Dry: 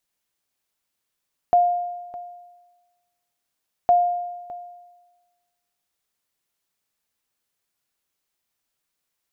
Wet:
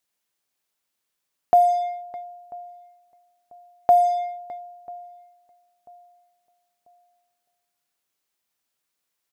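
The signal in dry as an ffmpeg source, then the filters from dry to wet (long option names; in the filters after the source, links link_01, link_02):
-f lavfi -i "aevalsrc='0.299*(sin(2*PI*706*mod(t,2.36))*exp(-6.91*mod(t,2.36)/1.26)+0.126*sin(2*PI*706*max(mod(t,2.36)-0.61,0))*exp(-6.91*max(mod(t,2.36)-0.61,0)/1.26))':duration=4.72:sample_rate=44100"
-filter_complex "[0:a]lowshelf=frequency=100:gain=-9,asplit=2[link_01][link_02];[link_02]acrusher=bits=4:mix=0:aa=0.5,volume=-11dB[link_03];[link_01][link_03]amix=inputs=2:normalize=0,asplit=2[link_04][link_05];[link_05]adelay=991,lowpass=frequency=980:poles=1,volume=-22dB,asplit=2[link_06][link_07];[link_07]adelay=991,lowpass=frequency=980:poles=1,volume=0.41,asplit=2[link_08][link_09];[link_09]adelay=991,lowpass=frequency=980:poles=1,volume=0.41[link_10];[link_04][link_06][link_08][link_10]amix=inputs=4:normalize=0"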